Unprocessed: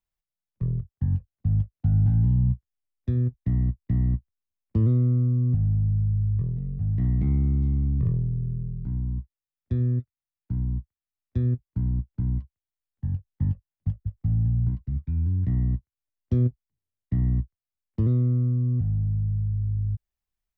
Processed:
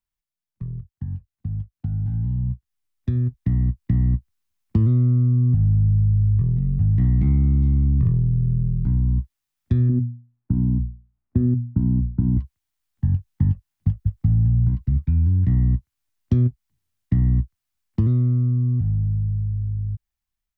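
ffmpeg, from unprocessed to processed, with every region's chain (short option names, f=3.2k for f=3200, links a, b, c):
-filter_complex "[0:a]asettb=1/sr,asplit=3[a][b][c];[a]atrim=end=9.894[d];[b]atrim=start=9.89:end=12.37,asetpts=PTS-STARTPTS,afade=t=in:d=0.004:c=qsin,afade=t=out:st=2.476:d=0.004:c=qsin,lowpass=1.1k,equalizer=f=250:t=o:w=1.1:g=7.5,bandreject=f=60:t=h:w=6,bandreject=f=120:t=h:w=6,bandreject=f=180:t=h:w=6,bandreject=f=240:t=h:w=6[e];[c]atrim=start=12.366[f];[d][e]acrossfade=d=0.004:c1=hsin:c2=qsin[g];[g][f]acrossfade=d=0.004:c1=qsin:c2=hsin,acompressor=threshold=-28dB:ratio=3,equalizer=f=500:w=2.2:g=-10,dynaudnorm=f=850:g=7:m=11.5dB"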